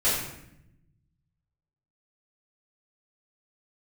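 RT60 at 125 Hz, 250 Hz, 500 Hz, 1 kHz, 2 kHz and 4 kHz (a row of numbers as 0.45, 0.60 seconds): 1.9, 1.3, 0.85, 0.70, 0.75, 0.60 seconds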